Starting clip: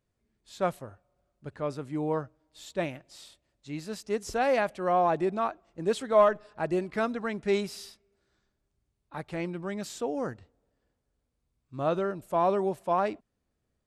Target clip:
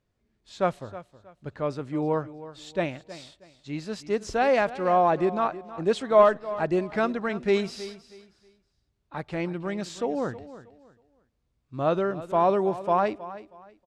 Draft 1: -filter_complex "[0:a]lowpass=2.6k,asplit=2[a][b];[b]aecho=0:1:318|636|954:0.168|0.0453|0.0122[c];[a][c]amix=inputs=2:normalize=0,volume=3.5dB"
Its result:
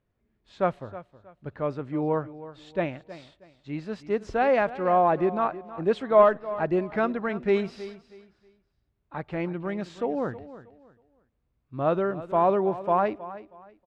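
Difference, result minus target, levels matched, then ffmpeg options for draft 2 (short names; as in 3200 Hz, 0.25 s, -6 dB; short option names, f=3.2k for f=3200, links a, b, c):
8000 Hz band -13.5 dB
-filter_complex "[0:a]lowpass=6.2k,asplit=2[a][b];[b]aecho=0:1:318|636|954:0.168|0.0453|0.0122[c];[a][c]amix=inputs=2:normalize=0,volume=3.5dB"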